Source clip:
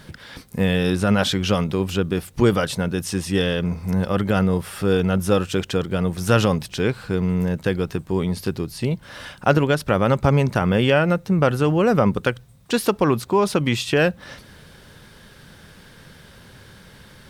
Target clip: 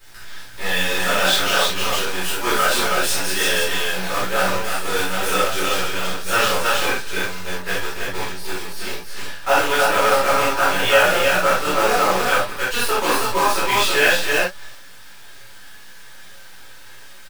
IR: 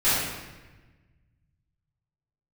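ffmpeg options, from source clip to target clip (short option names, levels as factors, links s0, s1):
-filter_complex "[0:a]asettb=1/sr,asplit=3[s0][s1][s2];[s0]atrim=end=1.904[s3];[s1]atrim=start=1.9:end=4.14,asetpts=PTS-STARTPTS,afade=t=in:d=0.004:c=qsin,afade=t=out:st=2.236:d=0.004:c=qsin,aeval=exprs='val(0)+0.5*0.0316*sgn(val(0))':c=same[s4];[s2]atrim=start=4.136[s5];[s3][s4]acrossfade=d=0.004:c1=hsin:c2=qsin[s6];[s6][s5]acrossfade=d=0.004:c1=qsin:c2=hsin,highpass=690,aecho=1:1:60|202|291|320:0.299|0.188|0.126|0.708,acrusher=bits=5:dc=4:mix=0:aa=0.000001,flanger=delay=9:depth=8.6:regen=37:speed=1.1:shape=sinusoidal[s7];[1:a]atrim=start_sample=2205,atrim=end_sample=4410[s8];[s7][s8]afir=irnorm=-1:irlink=0,volume=0.562"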